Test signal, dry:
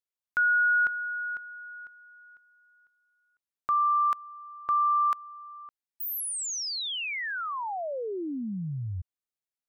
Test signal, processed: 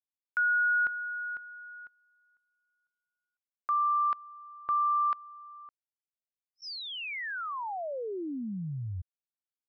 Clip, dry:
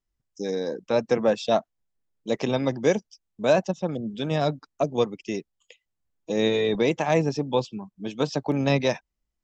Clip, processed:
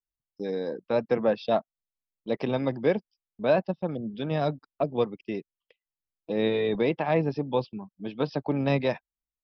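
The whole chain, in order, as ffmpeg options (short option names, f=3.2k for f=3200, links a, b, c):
-af "aresample=11025,aresample=44100,agate=range=-14dB:threshold=-47dB:ratio=3:release=20:detection=peak,equalizer=f=3.9k:t=o:w=1.1:g=-4.5,volume=-2.5dB"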